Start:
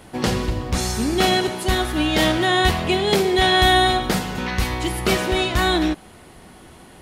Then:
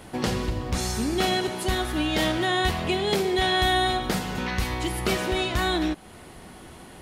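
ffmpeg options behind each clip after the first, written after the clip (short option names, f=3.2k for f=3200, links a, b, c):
-af "acompressor=threshold=-31dB:ratio=1.5"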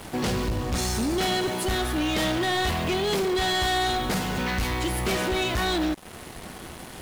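-af "acrusher=bits=6:mix=0:aa=0.5,asoftclip=type=tanh:threshold=-26dB,volume=4.5dB"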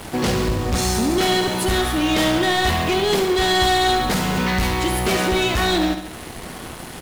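-af "aecho=1:1:70|140|210|280|350|420:0.355|0.192|0.103|0.0559|0.0302|0.0163,volume=5.5dB"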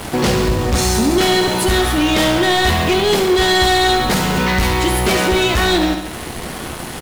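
-filter_complex "[0:a]asplit=2[a][b];[b]alimiter=limit=-18.5dB:level=0:latency=1:release=32,volume=1dB[c];[a][c]amix=inputs=2:normalize=0,asplit=2[d][e];[e]adelay=14,volume=-12dB[f];[d][f]amix=inputs=2:normalize=0"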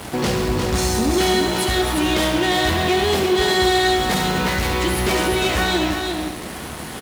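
-af "highpass=46,aecho=1:1:353:0.562,volume=-5dB"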